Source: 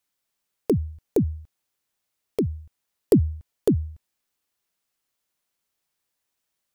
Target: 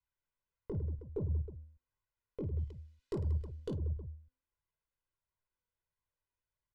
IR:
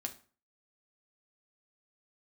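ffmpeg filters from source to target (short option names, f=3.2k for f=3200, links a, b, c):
-af "equalizer=f=520:t=o:w=2.6:g=-14,bandreject=f=258.4:t=h:w=4,bandreject=f=516.8:t=h:w=4,bandreject=f=775.2:t=h:w=4,bandreject=f=1.0336k:t=h:w=4,bandreject=f=1.292k:t=h:w=4,bandreject=f=1.5504k:t=h:w=4,bandreject=f=1.8088k:t=h:w=4,bandreject=f=2.0672k:t=h:w=4,bandreject=f=2.3256k:t=h:w=4,bandreject=f=2.584k:t=h:w=4,bandreject=f=2.8424k:t=h:w=4,bandreject=f=3.1008k:t=h:w=4,bandreject=f=3.3592k:t=h:w=4,bandreject=f=3.6176k:t=h:w=4,bandreject=f=3.876k:t=h:w=4,bandreject=f=4.1344k:t=h:w=4,bandreject=f=4.3928k:t=h:w=4,bandreject=f=4.6512k:t=h:w=4,bandreject=f=4.9096k:t=h:w=4,bandreject=f=5.168k:t=h:w=4,bandreject=f=5.4264k:t=h:w=4,bandreject=f=5.6848k:t=h:w=4,bandreject=f=5.9432k:t=h:w=4,bandreject=f=6.2016k:t=h:w=4,bandreject=f=6.46k:t=h:w=4,bandreject=f=6.7184k:t=h:w=4,bandreject=f=6.9768k:t=h:w=4,bandreject=f=7.2352k:t=h:w=4,bandreject=f=7.4936k:t=h:w=4,bandreject=f=7.752k:t=h:w=4,bandreject=f=8.0104k:t=h:w=4,asoftclip=type=tanh:threshold=-23.5dB,aecho=1:1:2:0.64,aecho=1:1:20|52|103.2|185.1|316.2:0.631|0.398|0.251|0.158|0.1,alimiter=level_in=5dB:limit=-24dB:level=0:latency=1:release=90,volume=-5dB,flanger=delay=0.9:depth=3.2:regen=53:speed=1.5:shape=sinusoidal,asetnsamples=n=441:p=0,asendcmd='2.59 lowpass f 4200;3.77 lowpass f 1000',lowpass=1.1k,volume=4dB"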